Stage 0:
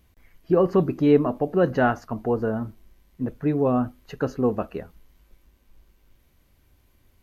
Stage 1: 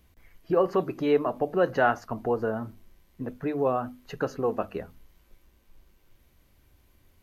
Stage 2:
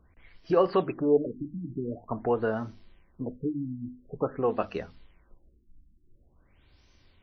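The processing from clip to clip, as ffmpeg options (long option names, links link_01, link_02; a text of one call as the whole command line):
ffmpeg -i in.wav -filter_complex "[0:a]acrossover=split=420[link_01][link_02];[link_01]acompressor=threshold=-32dB:ratio=6[link_03];[link_03][link_02]amix=inputs=2:normalize=0,bandreject=frequency=50:width_type=h:width=6,bandreject=frequency=100:width_type=h:width=6,bandreject=frequency=150:width_type=h:width=6,bandreject=frequency=200:width_type=h:width=6,bandreject=frequency=250:width_type=h:width=6" out.wav
ffmpeg -i in.wav -af "crystalizer=i=3.5:c=0,afftfilt=real='re*lt(b*sr/1024,310*pow(6300/310,0.5+0.5*sin(2*PI*0.47*pts/sr)))':imag='im*lt(b*sr/1024,310*pow(6300/310,0.5+0.5*sin(2*PI*0.47*pts/sr)))':win_size=1024:overlap=0.75" out.wav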